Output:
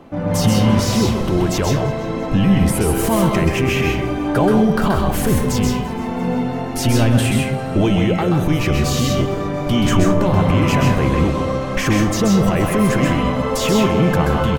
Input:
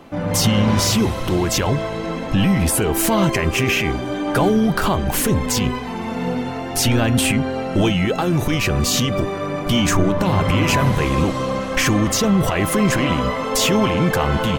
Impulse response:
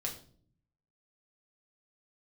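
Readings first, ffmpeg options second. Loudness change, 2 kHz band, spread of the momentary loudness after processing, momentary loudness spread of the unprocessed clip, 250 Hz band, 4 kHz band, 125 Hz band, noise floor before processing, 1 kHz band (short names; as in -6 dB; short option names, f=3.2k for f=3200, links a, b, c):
+1.5 dB, -1.5 dB, 6 LU, 7 LU, +2.5 dB, -3.0 dB, +3.0 dB, -26 dBFS, +0.5 dB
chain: -filter_complex "[0:a]tiltshelf=f=1.4k:g=4,aecho=1:1:342|684|1026|1368:0.0841|0.0471|0.0264|0.0148,asplit=2[a][b];[1:a]atrim=start_sample=2205,lowshelf=f=490:g=-6.5,adelay=129[c];[b][c]afir=irnorm=-1:irlink=0,volume=-2.5dB[d];[a][d]amix=inputs=2:normalize=0,volume=-2.5dB"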